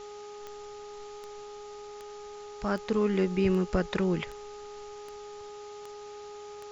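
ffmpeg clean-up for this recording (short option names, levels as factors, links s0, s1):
-af "adeclick=t=4,bandreject=f=414.2:t=h:w=4,bandreject=f=828.4:t=h:w=4,bandreject=f=1242.6:t=h:w=4,afwtdn=0.0028"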